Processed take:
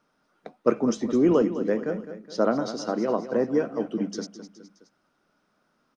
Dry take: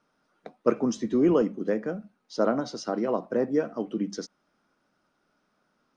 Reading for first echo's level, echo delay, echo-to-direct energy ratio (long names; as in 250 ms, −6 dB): −12.0 dB, 209 ms, −11.0 dB